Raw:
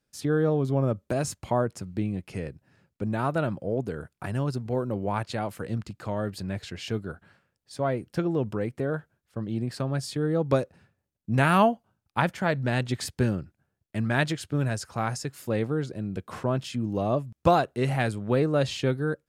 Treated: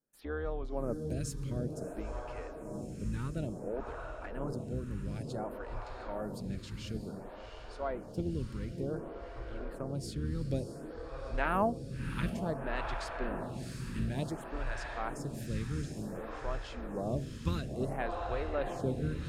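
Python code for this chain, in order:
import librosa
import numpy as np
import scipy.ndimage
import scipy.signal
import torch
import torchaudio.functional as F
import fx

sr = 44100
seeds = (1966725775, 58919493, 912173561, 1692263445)

y = fx.octave_divider(x, sr, octaves=2, level_db=0.0)
y = fx.echo_diffused(y, sr, ms=708, feedback_pct=70, wet_db=-6.5)
y = fx.stagger_phaser(y, sr, hz=0.56)
y = y * librosa.db_to_amplitude(-8.0)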